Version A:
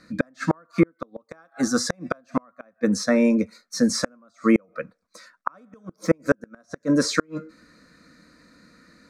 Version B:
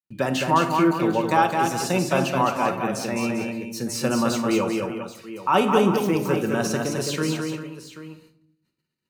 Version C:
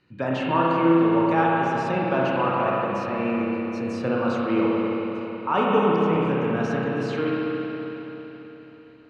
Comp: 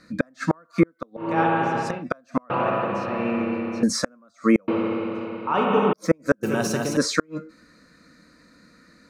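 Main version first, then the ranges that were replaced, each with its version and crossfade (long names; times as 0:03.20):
A
0:01.28–0:01.93: punch in from C, crossfade 0.24 s
0:02.50–0:03.83: punch in from C
0:04.68–0:05.93: punch in from C
0:06.43–0:06.97: punch in from B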